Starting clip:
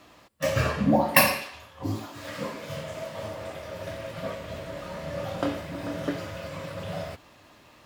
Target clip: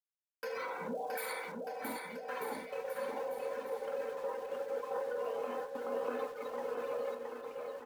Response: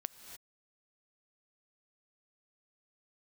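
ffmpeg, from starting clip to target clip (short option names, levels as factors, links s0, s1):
-af "afftdn=nr=16:nf=-39,highpass=600,agate=range=0.0126:threshold=0.01:ratio=16:detection=peak,lowpass=f=1100:p=1,aemphasis=mode=production:type=riaa,aecho=1:1:3.3:0.5,dynaudnorm=f=130:g=11:m=2.82,asetrate=37084,aresample=44100,atempo=1.18921,acompressor=threshold=0.0178:ratio=6,alimiter=level_in=3.16:limit=0.0631:level=0:latency=1,volume=0.316,aeval=exprs='val(0)*gte(abs(val(0)),0.00133)':c=same,aecho=1:1:670|1240|1724|2135|2485:0.631|0.398|0.251|0.158|0.1,volume=1.41"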